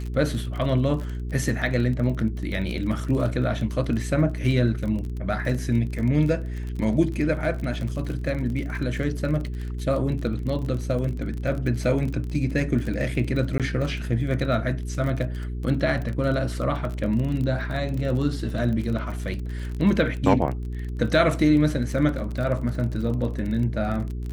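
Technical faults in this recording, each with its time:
surface crackle 30 per second −30 dBFS
mains hum 60 Hz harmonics 7 −30 dBFS
0:13.58–0:13.60: drop-out 17 ms

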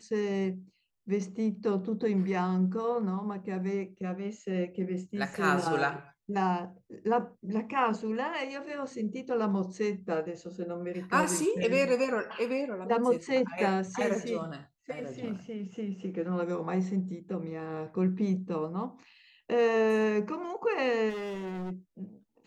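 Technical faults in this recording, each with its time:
0:21.09–0:21.72: clipping −34 dBFS

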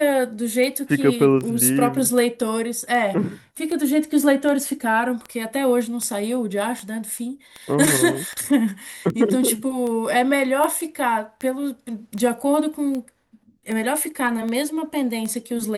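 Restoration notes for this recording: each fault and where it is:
scratch tick 78 rpm −17 dBFS

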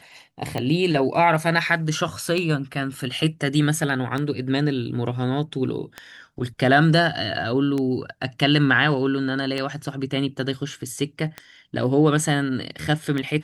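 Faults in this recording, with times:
scratch tick 33 1/3 rpm −14 dBFS

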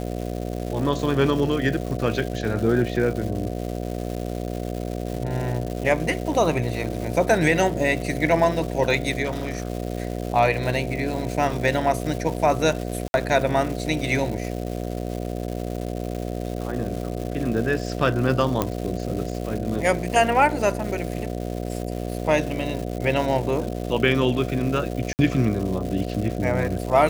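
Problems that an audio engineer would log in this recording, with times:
mains buzz 60 Hz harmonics 12 −29 dBFS
surface crackle 370 per second −30 dBFS
0:09.24–0:09.70: clipping −21.5 dBFS
0:13.08–0:13.14: drop-out 61 ms
0:18.62: click −7 dBFS
0:25.13–0:25.19: drop-out 59 ms

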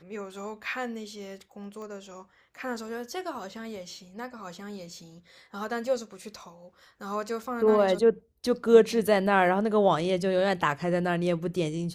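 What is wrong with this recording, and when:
0:01.82: click −32 dBFS

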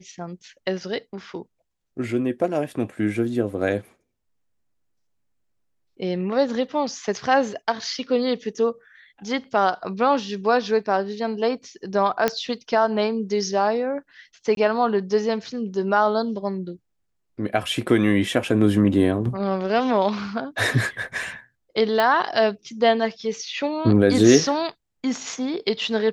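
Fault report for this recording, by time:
0:12.28: click −6 dBFS
0:14.55–0:14.57: drop-out 22 ms
0:22.00: click −9 dBFS

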